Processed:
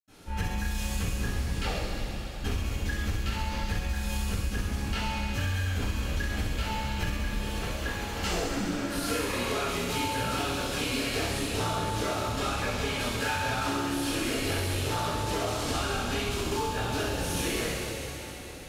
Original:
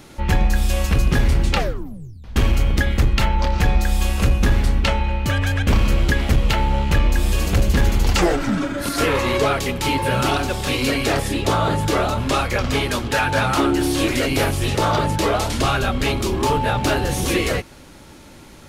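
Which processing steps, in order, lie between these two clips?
7.12–8.15 tone controls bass -13 dB, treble -8 dB; reverb RT60 4.3 s, pre-delay 77 ms; compressor, threshold -19 dBFS, peak gain reduction 8 dB; thin delay 66 ms, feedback 78%, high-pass 3400 Hz, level -3 dB; gain -7 dB

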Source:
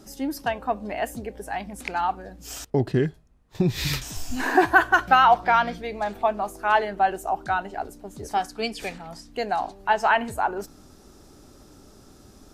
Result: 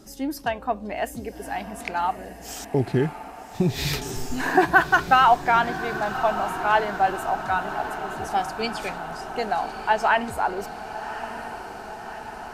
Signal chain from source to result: diffused feedback echo 1.159 s, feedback 67%, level -11.5 dB

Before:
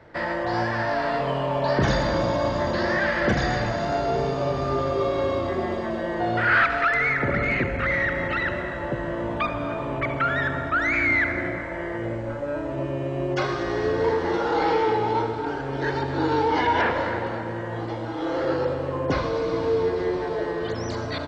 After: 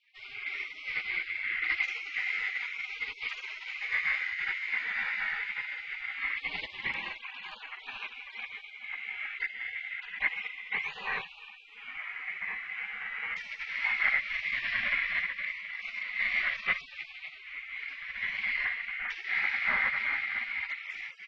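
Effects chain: spectral gate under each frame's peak -30 dB weak; synth low-pass 2100 Hz, resonance Q 9.8; wow and flutter 24 cents; gain +5 dB

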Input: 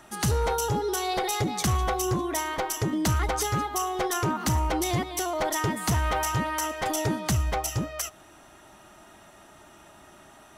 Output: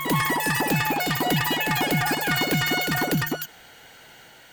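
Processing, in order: speed mistake 33 rpm record played at 78 rpm; reverse echo 0.243 s -4.5 dB; gain +2 dB

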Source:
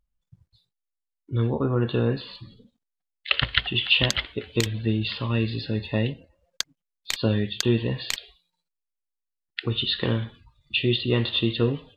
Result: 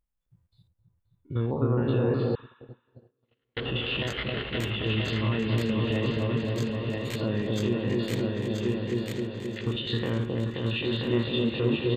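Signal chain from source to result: stepped spectrum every 50 ms; low shelf 200 Hz -5 dB; feedback echo 0.978 s, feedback 31%, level -6 dB; limiter -18.5 dBFS, peak gain reduction 9 dB; bell 5000 Hz -8.5 dB 1.3 oct; on a send: repeats that get brighter 0.264 s, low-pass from 750 Hz, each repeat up 1 oct, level 0 dB; 2.35–3.57 on the sum: gate -22 dBFS, range -49 dB; 2.23–3.05 spectral repair 870–4000 Hz both

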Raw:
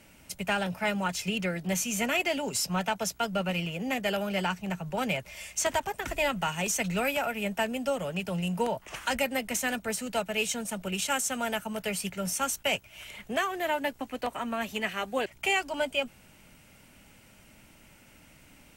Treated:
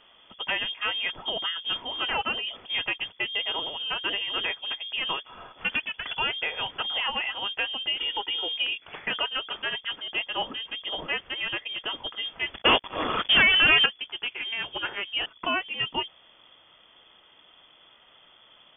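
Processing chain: 7.99–8.53 comb 2 ms, depth 97%; 12.54–13.86 sample leveller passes 5; inverted band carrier 3400 Hz

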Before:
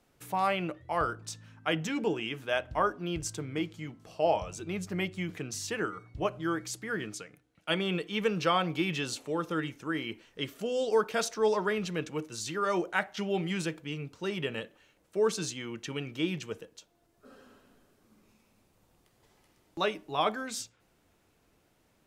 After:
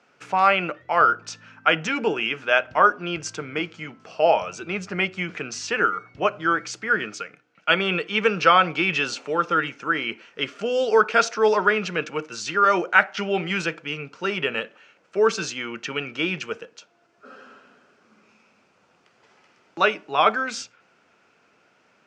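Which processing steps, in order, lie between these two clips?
speaker cabinet 230–6100 Hz, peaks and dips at 310 Hz -6 dB, 1400 Hz +9 dB, 2500 Hz +6 dB, 3800 Hz -5 dB; gain +8.5 dB

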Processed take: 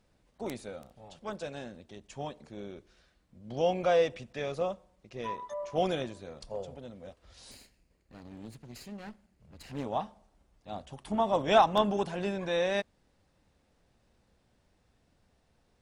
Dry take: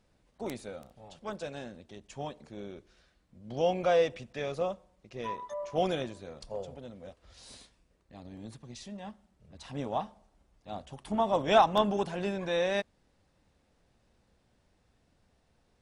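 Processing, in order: 7.51–9.84 minimum comb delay 0.44 ms

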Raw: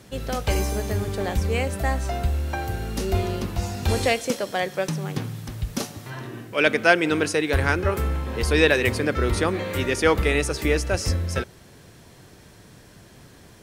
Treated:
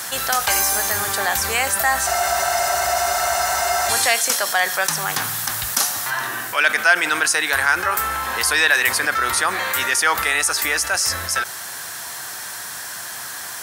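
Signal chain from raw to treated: HPF 66 Hz; pre-emphasis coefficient 0.97; vocal rider within 4 dB 2 s; band shelf 1100 Hz +11.5 dB; spectral freeze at 2.08, 1.80 s; fast leveller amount 50%; gain +6.5 dB

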